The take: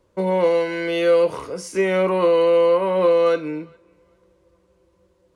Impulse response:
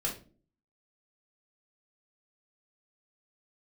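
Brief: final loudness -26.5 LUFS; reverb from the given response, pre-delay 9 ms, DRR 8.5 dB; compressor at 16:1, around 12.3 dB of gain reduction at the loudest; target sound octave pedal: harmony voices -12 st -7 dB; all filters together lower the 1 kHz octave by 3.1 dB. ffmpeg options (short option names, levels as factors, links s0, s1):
-filter_complex "[0:a]equalizer=f=1000:t=o:g=-3.5,acompressor=threshold=0.0501:ratio=16,asplit=2[s0][s1];[1:a]atrim=start_sample=2205,adelay=9[s2];[s1][s2]afir=irnorm=-1:irlink=0,volume=0.237[s3];[s0][s3]amix=inputs=2:normalize=0,asplit=2[s4][s5];[s5]asetrate=22050,aresample=44100,atempo=2,volume=0.447[s6];[s4][s6]amix=inputs=2:normalize=0,volume=1.41"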